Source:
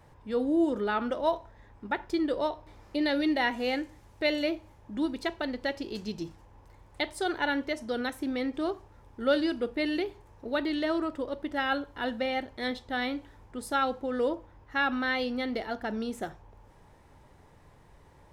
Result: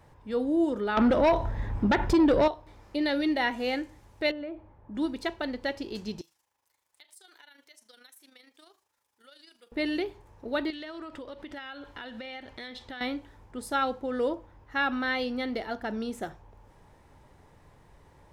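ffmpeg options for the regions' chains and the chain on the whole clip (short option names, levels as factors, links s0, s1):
-filter_complex "[0:a]asettb=1/sr,asplit=3[s0][s1][s2];[s0]atrim=end=0.974[s3];[s1]atrim=start=0.97:end=2.48,asetpts=PTS-STARTPTS,afade=t=in:d=0.004:c=qsin,afade=t=out:st=1.506:d=0.004:c=qsin,bass=f=250:g=9,treble=f=4000:g=-4,acompressor=threshold=0.0178:ratio=2:attack=3.2:release=140:knee=1:detection=peak,aeval=exprs='0.141*sin(PI/2*3.55*val(0)/0.141)':c=same[s4];[s2]atrim=start=2.476[s5];[s3][s4]acrossfade=d=0.004:c1=hsin:c2=qsin[s6];[s6][s5]acrossfade=d=0.004:c1=qsin:c2=hsin,asettb=1/sr,asplit=3[s7][s8][s9];[s7]atrim=end=4.314[s10];[s8]atrim=start=4.31:end=4.95,asetpts=PTS-STARTPTS,afade=t=in:d=0.004:c=qsin,afade=t=out:st=0.636:d=0.004:c=qsin,lowpass=1500,acompressor=threshold=0.0158:ratio=3:attack=3.2:release=140:knee=1:detection=peak[s11];[s9]atrim=start=4.946[s12];[s10][s11]acrossfade=d=0.004:c1=hsin:c2=qsin[s13];[s13][s12]acrossfade=d=0.004:c1=qsin:c2=hsin,asettb=1/sr,asplit=3[s14][s15][s16];[s14]atrim=end=6.214[s17];[s15]atrim=start=6.21:end=9.72,asetpts=PTS-STARTPTS,afade=t=in:d=0.004:c=qsin,afade=t=out:st=3.506:d=0.004:c=qsin,aderivative,acompressor=threshold=0.00398:ratio=6:attack=3.2:release=140:knee=1:detection=peak,tremolo=f=26:d=0.571[s18];[s16]atrim=start=9.716[s19];[s17][s18]acrossfade=d=0.004:c1=hsin:c2=qsin[s20];[s20][s19]acrossfade=d=0.004:c1=qsin:c2=hsin,asettb=1/sr,asplit=3[s21][s22][s23];[s21]atrim=end=10.704[s24];[s22]atrim=start=10.7:end=13.01,asetpts=PTS-STARTPTS,afade=t=in:d=0.004:c=qsin,afade=t=out:st=2.306:d=0.004:c=qsin,equalizer=f=2900:t=o:w=2.4:g=8,acompressor=threshold=0.0141:ratio=12:attack=3.2:release=140:knee=1:detection=peak[s25];[s23]atrim=start=13.006[s26];[s24][s25]acrossfade=d=0.004:c1=hsin:c2=qsin[s27];[s27][s26]acrossfade=d=0.004:c1=qsin:c2=hsin"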